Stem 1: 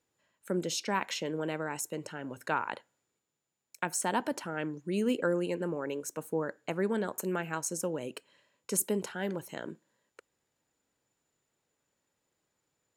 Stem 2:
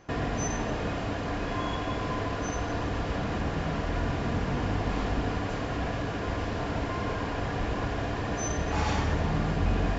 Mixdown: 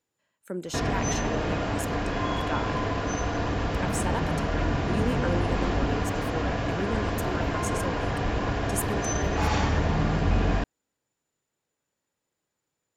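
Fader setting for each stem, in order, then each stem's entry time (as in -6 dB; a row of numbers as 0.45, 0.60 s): -2.0, +3.0 dB; 0.00, 0.65 s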